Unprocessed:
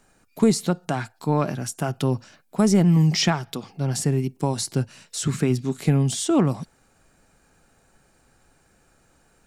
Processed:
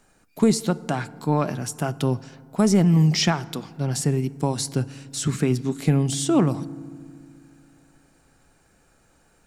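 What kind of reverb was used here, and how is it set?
FDN reverb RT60 2.1 s, low-frequency decay 1.4×, high-frequency decay 0.4×, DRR 18 dB

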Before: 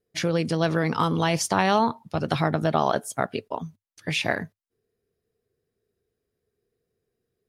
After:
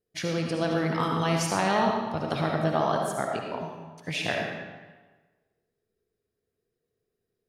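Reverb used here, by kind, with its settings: algorithmic reverb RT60 1.3 s, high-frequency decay 0.8×, pre-delay 30 ms, DRR 0.5 dB; trim -5.5 dB

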